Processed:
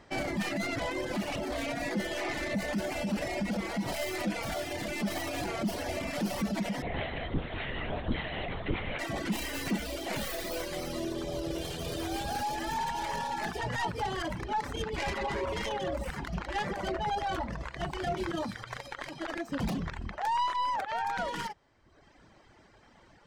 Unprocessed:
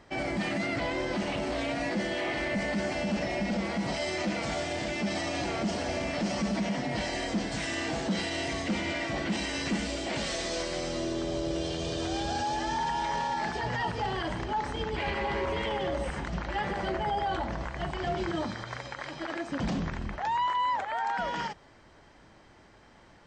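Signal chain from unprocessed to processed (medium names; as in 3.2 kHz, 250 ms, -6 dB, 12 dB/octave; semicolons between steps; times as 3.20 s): tracing distortion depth 0.16 ms; reverb removal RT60 1.1 s; 6.82–8.99 s: LPC vocoder at 8 kHz whisper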